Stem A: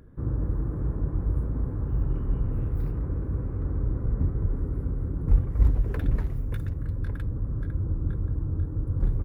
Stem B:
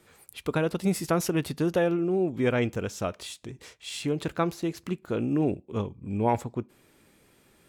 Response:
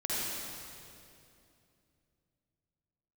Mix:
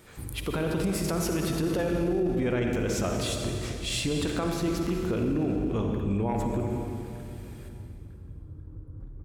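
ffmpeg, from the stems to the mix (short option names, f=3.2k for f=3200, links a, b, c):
-filter_complex "[0:a]acompressor=threshold=-28dB:ratio=5,volume=-7dB,asplit=2[a][b];[b]volume=-17dB[c];[1:a]acompressor=threshold=-28dB:ratio=6,volume=3dB,asplit=3[d][e][f];[e]volume=-7dB[g];[f]apad=whole_len=407508[h];[a][h]sidechaingate=range=-6dB:threshold=-55dB:ratio=16:detection=peak[i];[2:a]atrim=start_sample=2205[j];[c][g]amix=inputs=2:normalize=0[k];[k][j]afir=irnorm=-1:irlink=0[l];[i][d][l]amix=inputs=3:normalize=0,alimiter=limit=-19.5dB:level=0:latency=1:release=19"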